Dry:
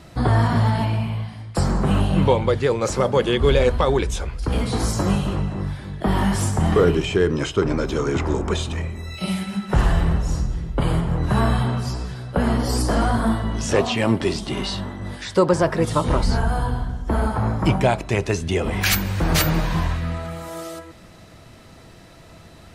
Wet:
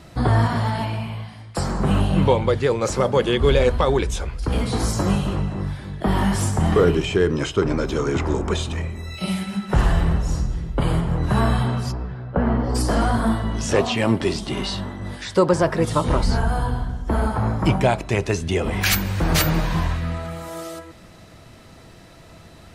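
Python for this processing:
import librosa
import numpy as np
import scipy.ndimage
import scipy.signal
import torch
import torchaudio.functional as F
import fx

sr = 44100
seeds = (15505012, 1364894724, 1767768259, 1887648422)

y = fx.low_shelf(x, sr, hz=340.0, db=-5.5, at=(0.47, 1.8))
y = fx.lowpass(y, sr, hz=1700.0, slope=12, at=(11.91, 12.74), fade=0.02)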